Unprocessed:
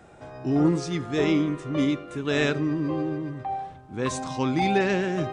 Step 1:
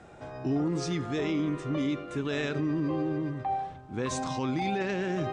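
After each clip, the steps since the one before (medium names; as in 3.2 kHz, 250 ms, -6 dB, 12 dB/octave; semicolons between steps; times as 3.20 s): low-pass 8.5 kHz 12 dB/octave; peak limiter -22 dBFS, peak gain reduction 11 dB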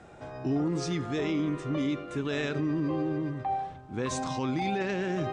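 no audible change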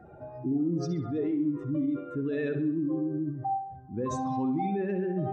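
spectral contrast enhancement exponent 2; bucket-brigade echo 65 ms, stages 2048, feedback 47%, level -9.5 dB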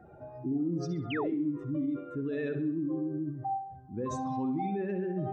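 painted sound fall, 1.10–1.34 s, 230–3300 Hz -34 dBFS; trim -3 dB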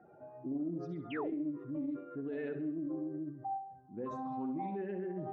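band-pass 190–2300 Hz; loudspeaker Doppler distortion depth 0.11 ms; trim -5 dB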